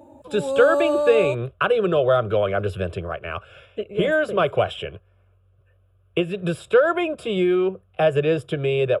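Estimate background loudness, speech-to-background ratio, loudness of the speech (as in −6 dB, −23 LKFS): −23.5 LKFS, 1.5 dB, −22.0 LKFS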